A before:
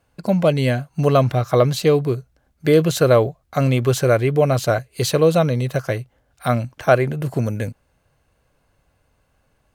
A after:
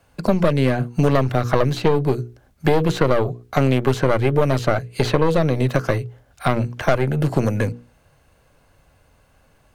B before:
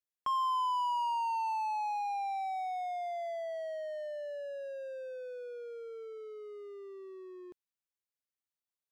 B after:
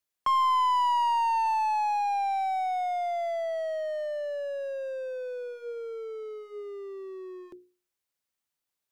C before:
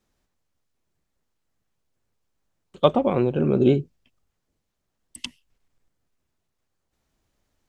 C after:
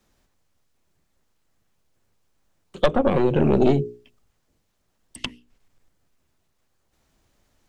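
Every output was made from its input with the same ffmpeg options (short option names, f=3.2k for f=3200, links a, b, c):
-filter_complex "[0:a]aeval=exprs='0.891*(cos(1*acos(clip(val(0)/0.891,-1,1)))-cos(1*PI/2))+0.2*(cos(4*acos(clip(val(0)/0.891,-1,1)))-cos(4*PI/2))+0.0891*(cos(5*acos(clip(val(0)/0.891,-1,1)))-cos(5*PI/2))+0.0398*(cos(8*acos(clip(val(0)/0.891,-1,1)))-cos(8*PI/2))':c=same,bandreject=f=60:t=h:w=6,bandreject=f=120:t=h:w=6,bandreject=f=180:t=h:w=6,bandreject=f=240:t=h:w=6,bandreject=f=300:t=h:w=6,bandreject=f=360:t=h:w=6,bandreject=f=420:t=h:w=6,bandreject=f=480:t=h:w=6,acrossover=split=210|3000|7000[a][b][c][d];[a]acompressor=threshold=-24dB:ratio=4[e];[b]acompressor=threshold=-21dB:ratio=4[f];[c]acompressor=threshold=-46dB:ratio=4[g];[d]acompressor=threshold=-56dB:ratio=4[h];[e][f][g][h]amix=inputs=4:normalize=0,volume=4dB"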